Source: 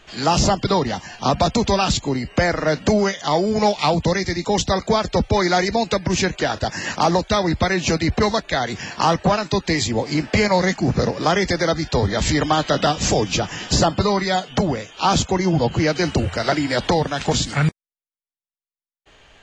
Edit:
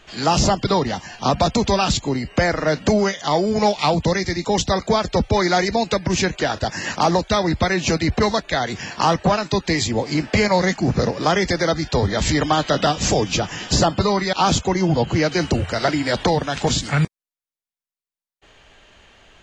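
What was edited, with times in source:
14.33–14.97 cut

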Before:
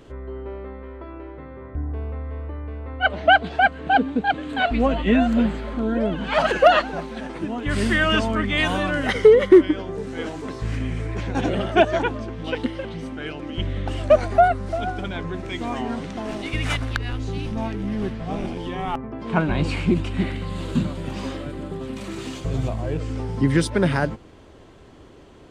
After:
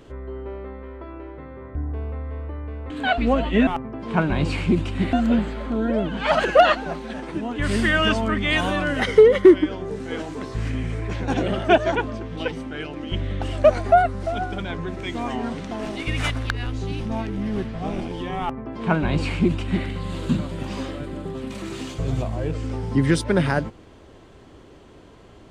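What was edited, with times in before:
2.9–4.43 cut
12.59–12.98 cut
18.86–20.32 copy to 5.2

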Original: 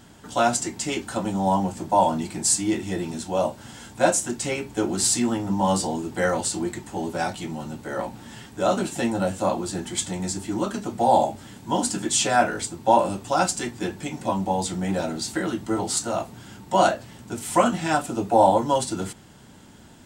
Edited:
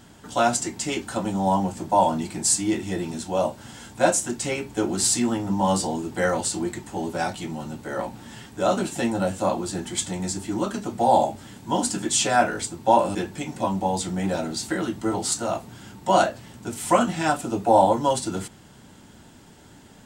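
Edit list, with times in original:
13.15–13.8 cut

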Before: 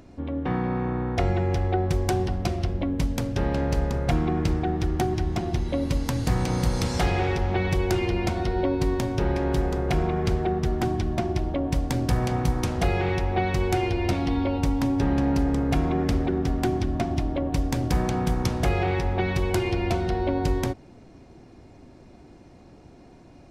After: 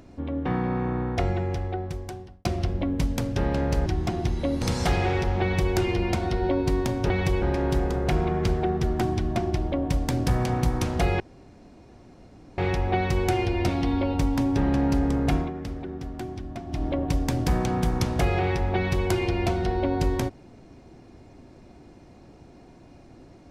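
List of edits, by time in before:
1–2.45 fade out
3.86–5.15 cut
5.91–6.76 cut
7.56–7.88 copy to 9.24
13.02 insert room tone 1.38 s
15.79–17.29 dip -10 dB, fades 0.17 s

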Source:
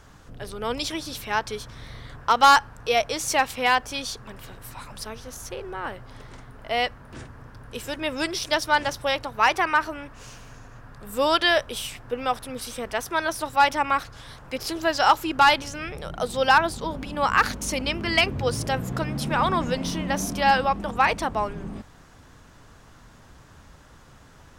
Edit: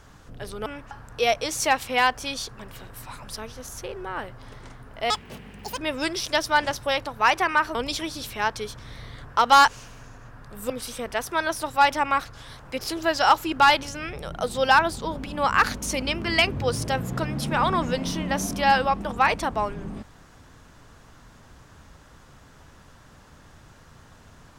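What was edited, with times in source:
0.66–2.59 swap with 9.93–10.18
6.78–7.96 speed 174%
11.2–12.49 cut

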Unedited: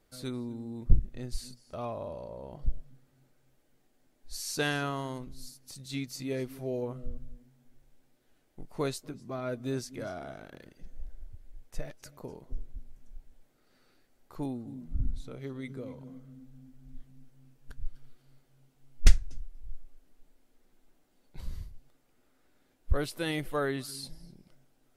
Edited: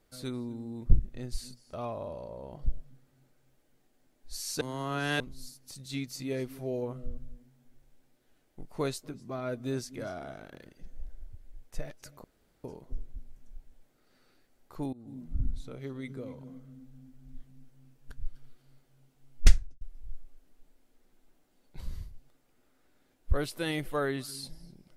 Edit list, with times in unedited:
4.61–5.2 reverse
12.24 insert room tone 0.40 s
14.53–14.78 fade in, from -21 dB
19.16–19.41 studio fade out

